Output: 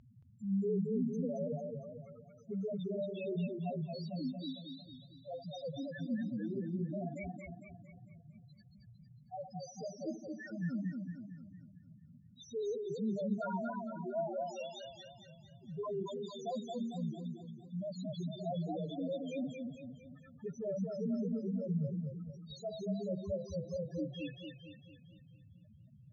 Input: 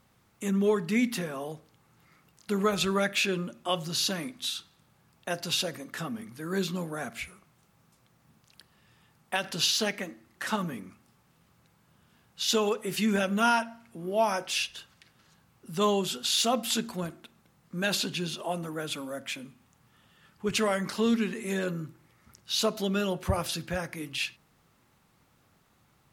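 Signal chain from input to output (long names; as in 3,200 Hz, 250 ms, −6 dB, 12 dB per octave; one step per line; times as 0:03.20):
graphic EQ with 15 bands 630 Hz +5 dB, 2,500 Hz −5 dB, 6,300 Hz +8 dB
reversed playback
downward compressor 5 to 1, threshold −39 dBFS, peak gain reduction 19.5 dB
reversed playback
brickwall limiter −35 dBFS, peak gain reduction 8.5 dB
upward compression, threshold −53 dBFS
spectral peaks only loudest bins 1
high-frequency loss of the air 94 metres
feedback echo with a swinging delay time 227 ms, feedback 49%, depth 92 cents, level −4 dB
level +12.5 dB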